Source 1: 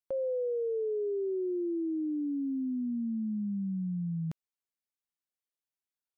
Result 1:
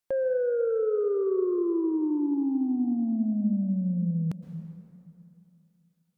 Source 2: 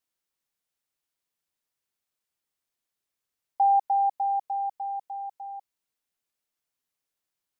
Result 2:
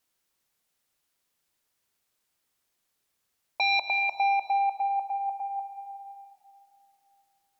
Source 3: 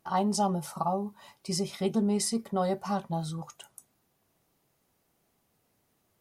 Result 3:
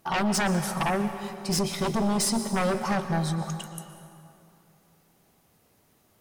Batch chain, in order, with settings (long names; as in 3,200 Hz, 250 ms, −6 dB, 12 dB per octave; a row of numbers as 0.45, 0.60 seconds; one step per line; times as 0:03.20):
sine wavefolder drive 10 dB, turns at −16 dBFS
dense smooth reverb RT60 2.8 s, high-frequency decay 0.6×, pre-delay 105 ms, DRR 9 dB
loudness normalisation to −27 LKFS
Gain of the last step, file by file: −7.0, −6.0, −6.0 decibels